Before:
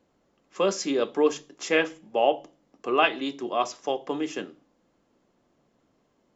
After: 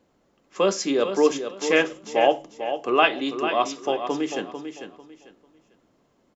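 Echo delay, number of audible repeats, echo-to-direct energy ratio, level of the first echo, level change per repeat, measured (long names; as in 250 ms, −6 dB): 446 ms, 3, −8.5 dB, −9.0 dB, −12.0 dB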